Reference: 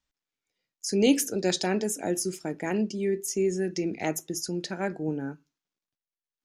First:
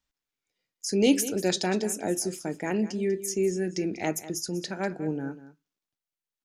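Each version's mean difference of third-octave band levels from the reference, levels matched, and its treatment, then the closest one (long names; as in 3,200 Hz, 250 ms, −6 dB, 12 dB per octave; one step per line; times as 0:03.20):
2.0 dB: single-tap delay 194 ms −15 dB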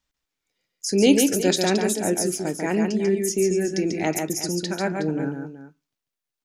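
5.5 dB: multi-tap delay 142/367 ms −4.5/−13 dB
level +4.5 dB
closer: first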